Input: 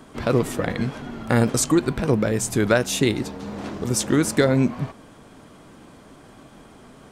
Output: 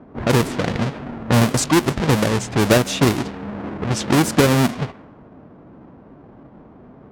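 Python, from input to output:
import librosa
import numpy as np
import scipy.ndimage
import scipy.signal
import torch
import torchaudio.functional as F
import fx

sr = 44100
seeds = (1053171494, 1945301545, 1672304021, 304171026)

y = fx.halfwave_hold(x, sr)
y = fx.highpass(y, sr, hz=59.0, slope=6)
y = fx.echo_thinned(y, sr, ms=152, feedback_pct=46, hz=420.0, wet_db=-22)
y = fx.env_lowpass(y, sr, base_hz=890.0, full_db=-11.5)
y = y * 10.0 ** (-1.0 / 20.0)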